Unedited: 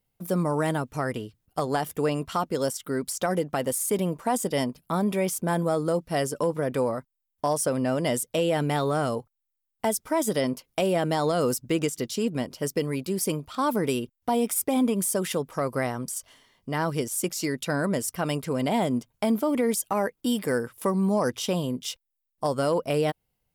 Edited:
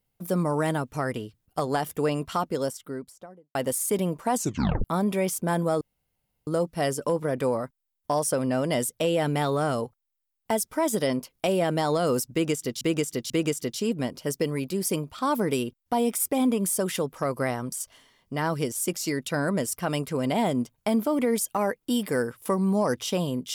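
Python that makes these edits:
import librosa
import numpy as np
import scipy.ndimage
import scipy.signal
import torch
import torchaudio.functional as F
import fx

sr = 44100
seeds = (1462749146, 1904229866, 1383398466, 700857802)

y = fx.studio_fade_out(x, sr, start_s=2.34, length_s=1.21)
y = fx.edit(y, sr, fx.tape_stop(start_s=4.35, length_s=0.49),
    fx.insert_room_tone(at_s=5.81, length_s=0.66),
    fx.repeat(start_s=11.66, length_s=0.49, count=3), tone=tone)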